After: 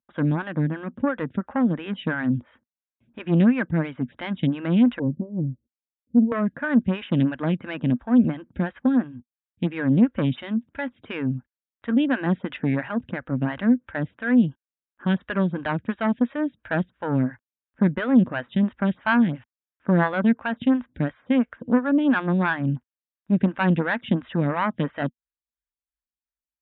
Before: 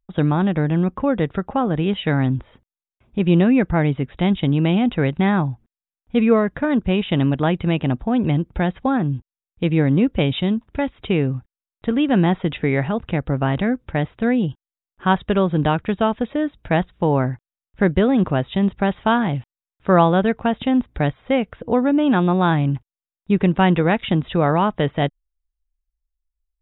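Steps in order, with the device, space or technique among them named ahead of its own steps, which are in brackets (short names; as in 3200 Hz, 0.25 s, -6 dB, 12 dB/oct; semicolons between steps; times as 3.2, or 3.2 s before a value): 4.99–6.32 Chebyshev low-pass 570 Hz, order 8; vibe pedal into a guitar amplifier (photocell phaser 2.9 Hz; tube stage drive 9 dB, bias 0.75; speaker cabinet 94–3500 Hz, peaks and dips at 240 Hz +8 dB, 410 Hz -9 dB, 750 Hz -6 dB, 1600 Hz +8 dB); gain +1.5 dB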